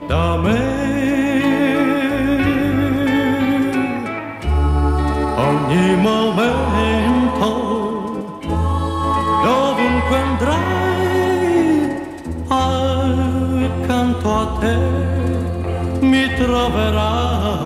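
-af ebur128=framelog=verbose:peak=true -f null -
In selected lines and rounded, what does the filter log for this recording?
Integrated loudness:
  I:         -17.2 LUFS
  Threshold: -27.2 LUFS
Loudness range:
  LRA:         1.7 LU
  Threshold: -37.3 LUFS
  LRA low:   -18.0 LUFS
  LRA high:  -16.3 LUFS
True peak:
  Peak:       -4.2 dBFS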